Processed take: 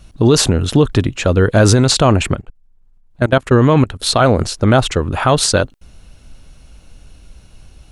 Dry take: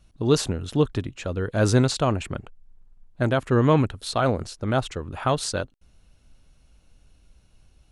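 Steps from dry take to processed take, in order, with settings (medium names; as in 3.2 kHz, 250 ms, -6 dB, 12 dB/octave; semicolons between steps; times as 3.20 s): 2.35–4.00 s: level held to a coarse grid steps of 21 dB; loudness maximiser +16 dB; trim -1 dB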